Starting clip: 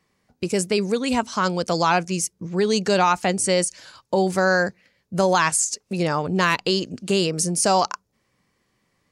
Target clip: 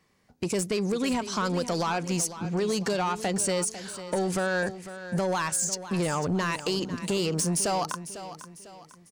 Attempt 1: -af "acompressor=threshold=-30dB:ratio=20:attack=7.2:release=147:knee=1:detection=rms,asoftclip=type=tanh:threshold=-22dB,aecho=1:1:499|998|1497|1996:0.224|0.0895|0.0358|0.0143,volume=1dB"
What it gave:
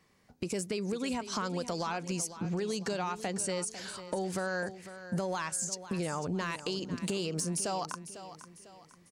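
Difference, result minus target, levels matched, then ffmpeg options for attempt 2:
compressor: peak gain reduction +9 dB
-af "acompressor=threshold=-20.5dB:ratio=20:attack=7.2:release=147:knee=1:detection=rms,asoftclip=type=tanh:threshold=-22dB,aecho=1:1:499|998|1497|1996:0.224|0.0895|0.0358|0.0143,volume=1dB"

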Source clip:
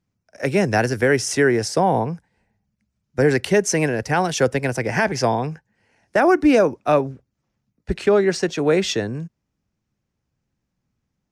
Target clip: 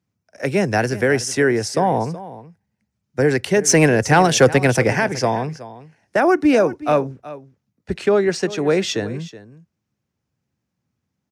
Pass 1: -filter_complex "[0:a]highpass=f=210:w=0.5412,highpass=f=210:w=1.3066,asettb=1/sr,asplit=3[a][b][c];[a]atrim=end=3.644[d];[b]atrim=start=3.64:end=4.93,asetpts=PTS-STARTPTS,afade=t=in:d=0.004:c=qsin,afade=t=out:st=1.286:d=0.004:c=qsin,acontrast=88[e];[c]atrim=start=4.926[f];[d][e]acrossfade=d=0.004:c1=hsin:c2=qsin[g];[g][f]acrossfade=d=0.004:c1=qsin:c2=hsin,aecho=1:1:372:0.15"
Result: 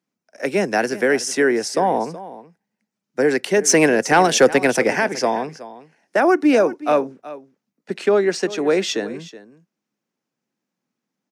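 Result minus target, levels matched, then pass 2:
125 Hz band -11.0 dB
-filter_complex "[0:a]highpass=f=72:w=0.5412,highpass=f=72:w=1.3066,asettb=1/sr,asplit=3[a][b][c];[a]atrim=end=3.644[d];[b]atrim=start=3.64:end=4.93,asetpts=PTS-STARTPTS,afade=t=in:d=0.004:c=qsin,afade=t=out:st=1.286:d=0.004:c=qsin,acontrast=88[e];[c]atrim=start=4.926[f];[d][e]acrossfade=d=0.004:c1=hsin:c2=qsin[g];[g][f]acrossfade=d=0.004:c1=qsin:c2=hsin,aecho=1:1:372:0.15"

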